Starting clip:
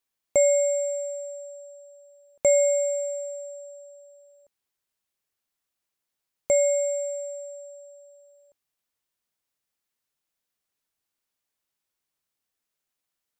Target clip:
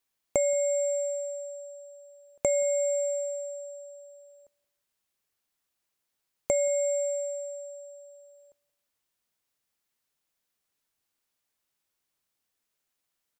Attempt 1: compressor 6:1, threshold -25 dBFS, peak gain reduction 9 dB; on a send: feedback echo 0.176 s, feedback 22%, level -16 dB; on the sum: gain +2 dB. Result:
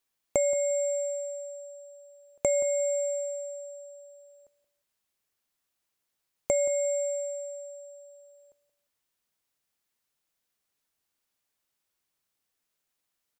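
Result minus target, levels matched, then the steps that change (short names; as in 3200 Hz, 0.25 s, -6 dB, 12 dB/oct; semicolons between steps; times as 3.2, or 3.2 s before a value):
echo-to-direct +7.5 dB
change: feedback echo 0.176 s, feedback 22%, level -23.5 dB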